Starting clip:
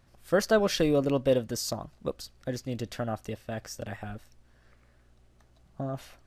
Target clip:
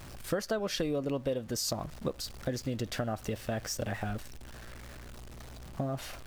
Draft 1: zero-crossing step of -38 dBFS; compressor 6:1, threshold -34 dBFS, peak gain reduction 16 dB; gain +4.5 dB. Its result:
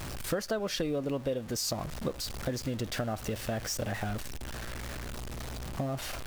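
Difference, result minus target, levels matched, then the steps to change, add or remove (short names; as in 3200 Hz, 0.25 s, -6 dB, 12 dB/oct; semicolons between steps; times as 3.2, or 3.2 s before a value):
zero-crossing step: distortion +9 dB
change: zero-crossing step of -47.5 dBFS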